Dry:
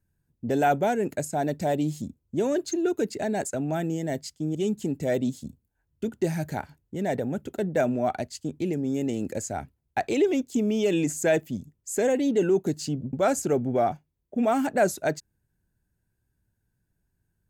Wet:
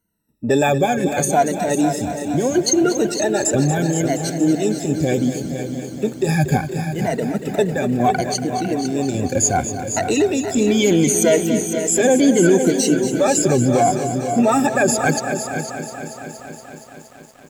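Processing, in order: drifting ripple filter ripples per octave 1.9, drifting -0.71 Hz, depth 23 dB; dynamic bell 6.6 kHz, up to +5 dB, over -42 dBFS, Q 0.71; peak limiter -13.5 dBFS, peak gain reduction 7.5 dB; random-step tremolo; on a send: delay 501 ms -9.5 dB; on the sum: bit-crushed delay 235 ms, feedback 80%, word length 9-bit, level -11 dB; trim +7 dB

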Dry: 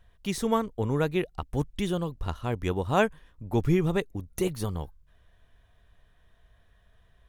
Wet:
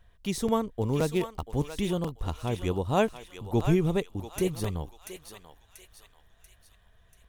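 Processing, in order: 0.81–1.55 s: dead-time distortion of 0.059 ms; dynamic bell 1.6 kHz, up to -7 dB, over -48 dBFS, Q 1.4; on a send: thinning echo 687 ms, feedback 48%, high-pass 1.2 kHz, level -6 dB; on the sum: crackling interface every 0.52 s, samples 128, repeat, from 0.48 s

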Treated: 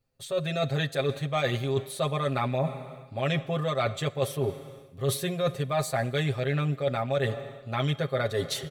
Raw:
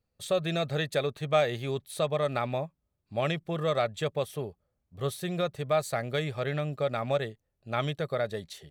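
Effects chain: comb 7.5 ms, depth 92%; level rider gain up to 11.5 dB; Schroeder reverb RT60 2.1 s, combs from 31 ms, DRR 18.5 dB; reverse; compression 6:1, threshold -25 dBFS, peak gain reduction 15 dB; reverse

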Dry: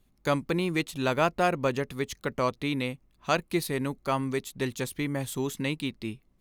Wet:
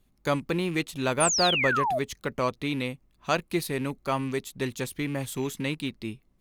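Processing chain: rattle on loud lows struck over -36 dBFS, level -35 dBFS; painted sound fall, 1.20–1.99 s, 580–10000 Hz -26 dBFS

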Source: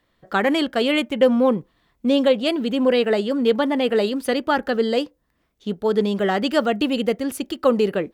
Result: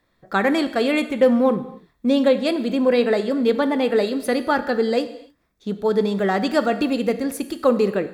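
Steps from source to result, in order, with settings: band-stop 3 kHz, Q 5.1; gated-style reverb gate 320 ms falling, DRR 10 dB

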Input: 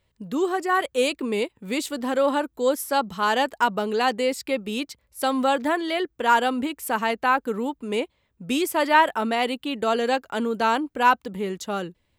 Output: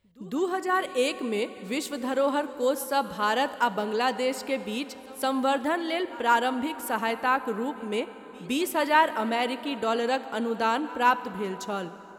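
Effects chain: reverse echo 163 ms -22.5 dB; plate-style reverb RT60 4.6 s, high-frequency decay 0.55×, DRR 13 dB; trim -3.5 dB

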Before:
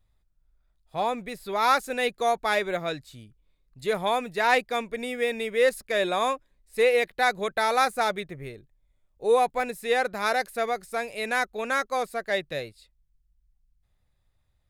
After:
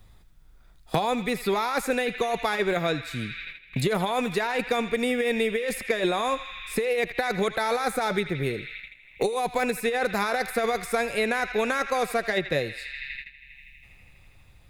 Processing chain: compressor with a negative ratio -28 dBFS, ratio -1; on a send: band-passed feedback delay 81 ms, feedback 84%, band-pass 2.5 kHz, level -11 dB; on the sum: gate -52 dBFS, range -18 dB; bass shelf 340 Hz +3.5 dB; band-stop 610 Hz, Q 12; three bands compressed up and down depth 100%; trim +2 dB

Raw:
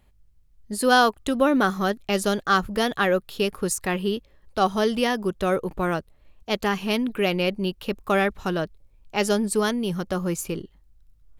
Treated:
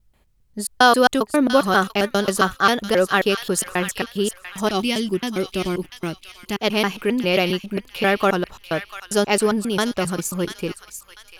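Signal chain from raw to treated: slices played last to first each 134 ms, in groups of 2; bass shelf 120 Hz -8.5 dB; time-frequency box 4.68–6.61 s, 390–2000 Hz -10 dB; on a send: feedback echo behind a high-pass 692 ms, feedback 31%, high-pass 1.7 kHz, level -8 dB; on the sum: trim +4.5 dB

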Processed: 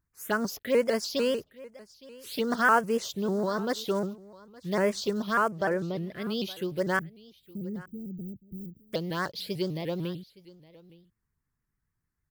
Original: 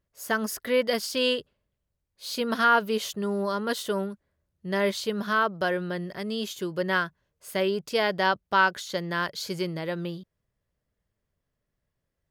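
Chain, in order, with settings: block-companded coder 5-bit; 5.51–6.22 s: treble shelf 4.8 kHz -9 dB; 6.99–8.93 s: inverse Chebyshev band-stop 1.3–7.1 kHz, stop band 80 dB; touch-sensitive phaser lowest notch 570 Hz, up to 3.7 kHz, full sweep at -22 dBFS; delay 865 ms -21.5 dB; vibrato with a chosen wave saw up 6.7 Hz, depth 160 cents

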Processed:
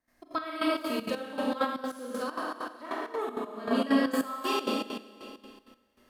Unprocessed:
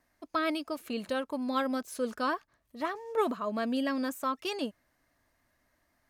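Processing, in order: Schroeder reverb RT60 2.2 s, combs from 29 ms, DRR -6 dB; trance gate ".xx.x...xx" 196 bpm -12 dB; 1.64–3.71 s: compression 4:1, threshold -30 dBFS, peak gain reduction 9 dB; trim -1 dB

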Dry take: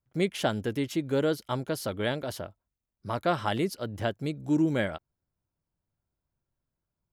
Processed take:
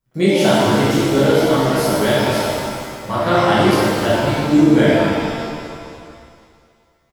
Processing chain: frequency-shifting echo 251 ms, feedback 60%, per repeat -50 Hz, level -19 dB; pitch-shifted reverb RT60 2 s, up +7 st, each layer -8 dB, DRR -10 dB; trim +3.5 dB

